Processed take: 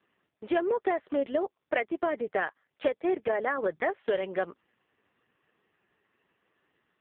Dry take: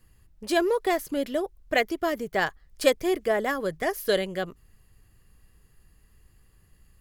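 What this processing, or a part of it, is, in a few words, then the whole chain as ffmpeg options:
voicemail: -af "highpass=360,lowpass=2.7k,acompressor=threshold=-27dB:ratio=10,volume=4.5dB" -ar 8000 -c:a libopencore_amrnb -b:a 5150

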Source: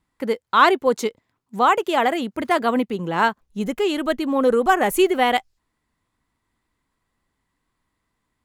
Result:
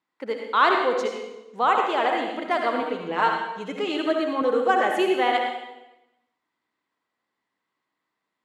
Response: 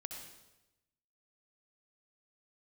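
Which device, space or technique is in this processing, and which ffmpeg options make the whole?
supermarket ceiling speaker: -filter_complex "[0:a]highpass=340,lowpass=5.1k[a];[1:a]atrim=start_sample=2205[b];[a][b]afir=irnorm=-1:irlink=0,asettb=1/sr,asplit=3[c][d][e];[c]atrim=end=2.814[f];[d]atrim=start=2.81:end=4.42,asetpts=PTS-STARTPTS,afade=t=in:d=0.004:c=qsin,afade=t=out:st=1.606:d=0.004:c=qsin,aecho=1:1:6.5:0.6,atrim=end_sample=71001[g];[e]atrim=start=4.416[h];[f][g]acrossfade=d=0.004:c1=hsin:c2=qsin[i];[i][h]acrossfade=d=0.004:c1=qsin:c2=hsin"

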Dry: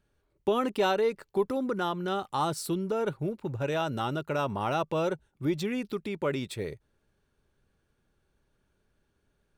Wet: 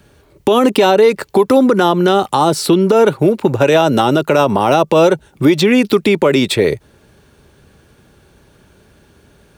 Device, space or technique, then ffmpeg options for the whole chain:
mastering chain: -filter_complex "[0:a]highpass=60,equalizer=f=1.4k:t=o:w=0.77:g=-2.5,acrossover=split=210|790|4400[a][b][c][d];[a]acompressor=threshold=-50dB:ratio=4[e];[b]acompressor=threshold=-30dB:ratio=4[f];[c]acompressor=threshold=-39dB:ratio=4[g];[d]acompressor=threshold=-51dB:ratio=4[h];[e][f][g][h]amix=inputs=4:normalize=0,acompressor=threshold=-39dB:ratio=1.5,alimiter=level_in=27.5dB:limit=-1dB:release=50:level=0:latency=1,volume=-1dB"

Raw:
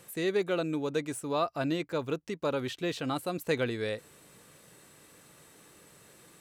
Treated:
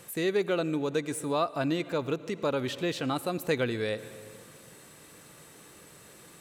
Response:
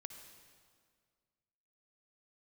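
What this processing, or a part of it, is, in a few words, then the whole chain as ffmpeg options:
ducked reverb: -filter_complex "[0:a]asplit=3[a][b][c];[1:a]atrim=start_sample=2205[d];[b][d]afir=irnorm=-1:irlink=0[e];[c]apad=whole_len=282523[f];[e][f]sidechaincompress=threshold=-35dB:ratio=8:attack=7.4:release=200,volume=1.5dB[g];[a][g]amix=inputs=2:normalize=0"

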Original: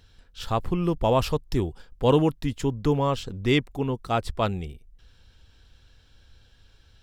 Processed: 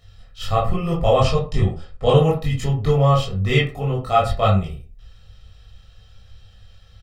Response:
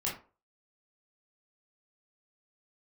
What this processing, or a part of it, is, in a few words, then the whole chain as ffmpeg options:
microphone above a desk: -filter_complex "[0:a]asettb=1/sr,asplit=3[a][b][c];[a]atrim=end=1.144[d];[b]atrim=start=1.14:end=2.16,asetpts=PTS-STARTPTS,afade=t=in:d=0.004:c=qsin,afade=t=out:st=1.016:d=0.004:c=qsin,lowpass=f=8.6k:w=0.5412,lowpass=f=8.6k:w=1.3066[e];[c]atrim=start=2.156[f];[d][e]acrossfade=d=0.004:c1=hsin:c2=qsin[g];[g][f]acrossfade=d=0.004:c1=qsin:c2=hsin,aecho=1:1:1.6:0.74[h];[1:a]atrim=start_sample=2205[i];[h][i]afir=irnorm=-1:irlink=0"

